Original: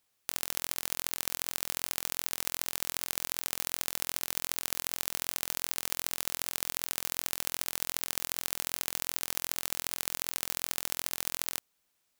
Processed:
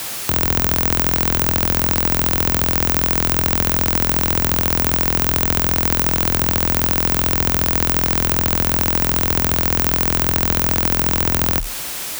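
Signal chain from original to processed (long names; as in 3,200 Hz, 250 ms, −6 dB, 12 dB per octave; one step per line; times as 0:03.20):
frequency shifter +35 Hz
power curve on the samples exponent 0.35
level +4.5 dB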